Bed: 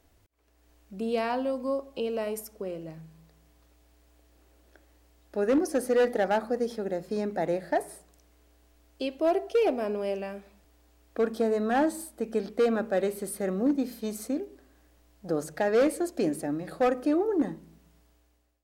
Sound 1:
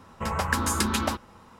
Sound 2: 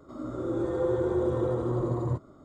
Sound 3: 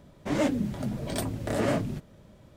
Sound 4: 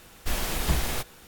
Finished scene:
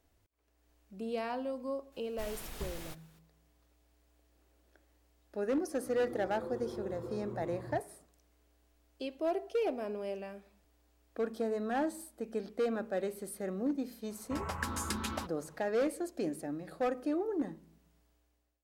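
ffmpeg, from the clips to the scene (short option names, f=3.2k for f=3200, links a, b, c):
-filter_complex "[0:a]volume=-8dB[a];[4:a]atrim=end=1.27,asetpts=PTS-STARTPTS,volume=-16.5dB,afade=t=in:d=0.004:c=hsin,afade=t=out:st=1.266:d=0.004:c=hsin,adelay=1920[b];[2:a]atrim=end=2.44,asetpts=PTS-STARTPTS,volume=-15.5dB,afade=t=in:d=0.004:c=hsin,afade=t=out:st=2.436:d=0.004:c=hsin,adelay=5620[c];[1:a]atrim=end=1.59,asetpts=PTS-STARTPTS,volume=-11dB,afade=t=in:d=0.004:c=hsin,afade=t=out:st=1.586:d=0.004:c=hsin,adelay=14100[d];[a][b][c][d]amix=inputs=4:normalize=0"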